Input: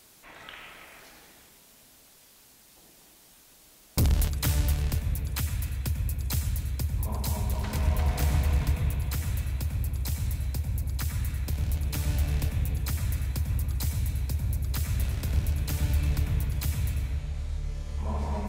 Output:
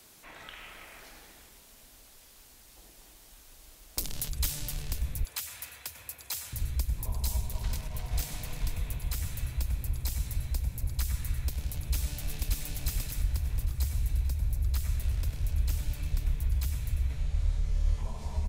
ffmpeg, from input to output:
ffmpeg -i in.wav -filter_complex "[0:a]asettb=1/sr,asplit=3[link_01][link_02][link_03];[link_01]atrim=end=5.234[link_04];[link_02]atrim=start=5.23:end=6.53,asetpts=PTS-STARTPTS,afade=type=in:duration=0.004:curve=qsin,afade=type=out:start_time=1.296:duration=0.004:curve=qsin,highpass=600[link_05];[link_03]atrim=start=6.526[link_06];[link_04][link_05]acrossfade=duration=0.004:curve1=hsin:curve2=qsin[link_07];[link_07][link_06]acrossfade=duration=0.004:curve1=qsin:curve2=hsin,asettb=1/sr,asplit=3[link_08][link_09][link_10];[link_08]atrim=end=7.374[link_11];[link_09]atrim=start=7.37:end=8.16,asetpts=PTS-STARTPTS,afade=type=in:duration=0.004:curve=qsin,afade=type=out:start_time=0.786:duration=0.004:curve=qsin,acompressor=threshold=-25dB:ratio=6:attack=3.2:release=140:knee=1:detection=peak[link_12];[link_10]atrim=start=8.156[link_13];[link_11][link_12]acrossfade=duration=0.004:curve1=hsin:curve2=qsin[link_14];[link_14][link_13]acrossfade=duration=0.004:curve1=qsin:curve2=hsin,asplit=2[link_15][link_16];[link_16]afade=type=in:start_time=11.71:duration=0.01,afade=type=out:start_time=12.49:duration=0.01,aecho=0:1:580|1160|1740|2320|2900|3480|4060:0.891251|0.445625|0.222813|0.111406|0.0557032|0.0278516|0.0139258[link_17];[link_15][link_17]amix=inputs=2:normalize=0,asettb=1/sr,asplit=3[link_18][link_19][link_20];[link_18]atrim=end=13.224[link_21];[link_19]atrim=start=13.22:end=17.1,asetpts=PTS-STARTPTS,afade=type=in:duration=0.004:curve=qsin,afade=type=out:start_time=3.876:duration=0.004:curve=qsin,flanger=delay=0.1:depth=5.6:regen=81:speed=1.9:shape=triangular[link_22];[link_20]atrim=start=17.096[link_23];[link_21][link_22]acrossfade=duration=0.004:curve1=hsin:curve2=qsin[link_24];[link_24][link_23]acrossfade=duration=0.004:curve1=qsin:curve2=hsin,afftfilt=real='re*lt(hypot(re,im),0.282)':imag='im*lt(hypot(re,im),0.282)':win_size=1024:overlap=0.75,acrossover=split=130|3000[link_25][link_26][link_27];[link_26]acompressor=threshold=-45dB:ratio=6[link_28];[link_25][link_28][link_27]amix=inputs=3:normalize=0,asubboost=boost=7:cutoff=62" out.wav

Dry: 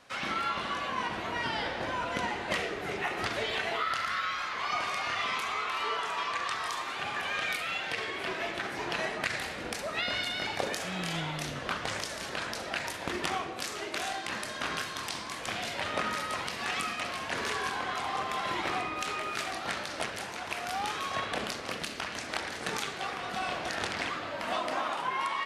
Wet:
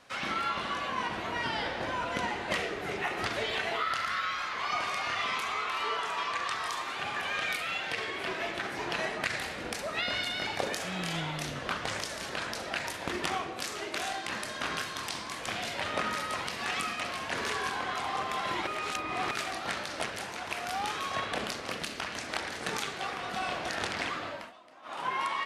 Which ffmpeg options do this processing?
ffmpeg -i in.wav -filter_complex "[0:a]asplit=5[link_01][link_02][link_03][link_04][link_05];[link_01]atrim=end=18.672[link_06];[link_02]atrim=start=18.668:end=19.312,asetpts=PTS-STARTPTS,areverse[link_07];[link_03]atrim=start=19.308:end=24.52,asetpts=PTS-STARTPTS,afade=type=out:start_time=4.962:duration=0.25:silence=0.0707946[link_08];[link_04]atrim=start=24.52:end=24.82,asetpts=PTS-STARTPTS,volume=-23dB[link_09];[link_05]atrim=start=24.82,asetpts=PTS-STARTPTS,afade=type=in:duration=0.25:silence=0.0707946[link_10];[link_06][link_07]acrossfade=duration=0.004:curve1=hsin:curve2=hsin[link_11];[link_08][link_09][link_10]concat=n=3:v=0:a=1[link_12];[link_11][link_12]acrossfade=duration=0.004:curve1=hsin:curve2=hsin" out.wav

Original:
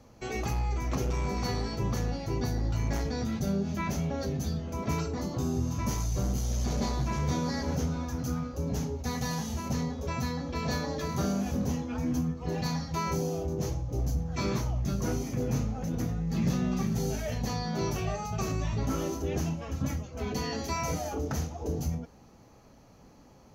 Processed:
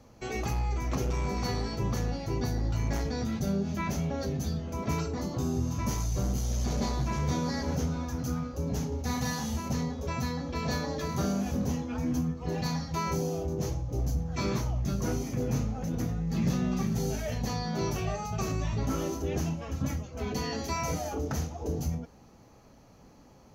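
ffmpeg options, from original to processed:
ffmpeg -i in.wav -filter_complex "[0:a]asettb=1/sr,asplit=3[link_01][link_02][link_03];[link_01]atrim=end=8.884[link_04];[link_02]atrim=start=8.88:end=9.58,asetpts=PTS-STARTPTS,afade=type=in:duration=0.004:curve=qsin,afade=type=out:start_time=0.696:duration=0.004:curve=qsin,asplit=2[link_05][link_06];[link_06]adelay=40,volume=-4dB[link_07];[link_05][link_07]amix=inputs=2:normalize=0,atrim=end_sample=30870[link_08];[link_03]atrim=start=9.576[link_09];[link_04][link_08]acrossfade=duration=0.004:curve1=hsin:curve2=qsin[link_10];[link_10][link_09]acrossfade=duration=0.004:curve1=qsin:curve2=hsin" out.wav

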